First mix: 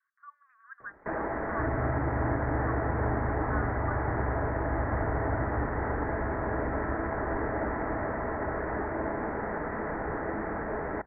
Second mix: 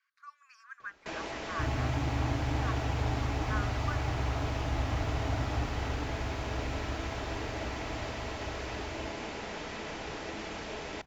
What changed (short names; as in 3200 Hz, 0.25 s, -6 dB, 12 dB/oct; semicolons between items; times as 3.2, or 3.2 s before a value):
first sound -7.5 dB; master: remove steep low-pass 1900 Hz 72 dB/oct